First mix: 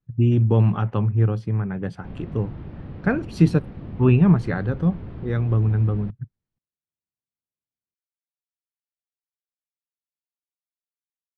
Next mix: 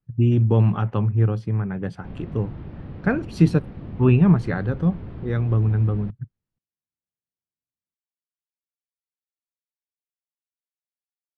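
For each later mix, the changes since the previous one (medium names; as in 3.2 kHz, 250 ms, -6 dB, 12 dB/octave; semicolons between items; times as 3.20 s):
no change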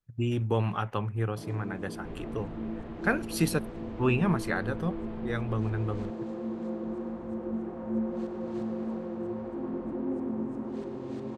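speech: remove distance through air 98 m; first sound: unmuted; master: add peaking EQ 140 Hz -13 dB 2.9 oct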